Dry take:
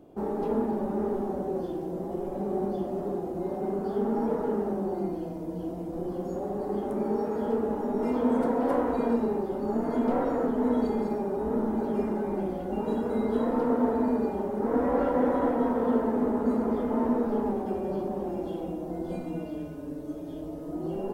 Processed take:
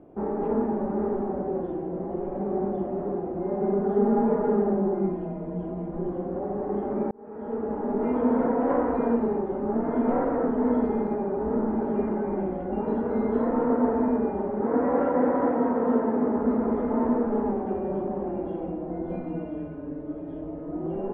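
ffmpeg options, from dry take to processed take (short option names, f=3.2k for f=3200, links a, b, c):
-filter_complex "[0:a]asettb=1/sr,asplit=3[a][b][c];[a]atrim=end=3.484[d];[b]atrim=start=3.48:end=6.1,asetpts=PTS-STARTPTS,afade=t=in:d=0.004:c=qsin,afade=t=out:st=2.616:d=0.004:c=qsin,aecho=1:1:4.9:0.67,atrim=end_sample=115542[e];[c]atrim=start=6.096[f];[d][e]acrossfade=d=0.004:c1=hsin:c2=qsin[g];[g][f]acrossfade=d=0.004:c1=qsin:c2=hsin,asettb=1/sr,asplit=3[h][i][j];[h]atrim=end=14.624[k];[i]atrim=start=14.62:end=16.36,asetpts=PTS-STARTPTS,afade=t=in:d=0.004:c=qsin,afade=t=out:st=1.736:d=0.004:c=qsin,highpass=98[l];[j]atrim=start=16.356[m];[k][l]acrossfade=d=0.004:c1=hsin:c2=qsin[n];[n][m]acrossfade=d=0.004:c1=qsin:c2=hsin,asplit=2[o][p];[o]atrim=end=7.11,asetpts=PTS-STARTPTS,afade=t=out:st=7.106:d=0.004:c=hsin[q];[p]atrim=start=7.11,asetpts=PTS-STARTPTS,afade=t=in:d=0.8[r];[q][r]concat=n=2:v=0:a=1,lowpass=f=2.2k:w=0.5412,lowpass=f=2.2k:w=1.3066,volume=2dB"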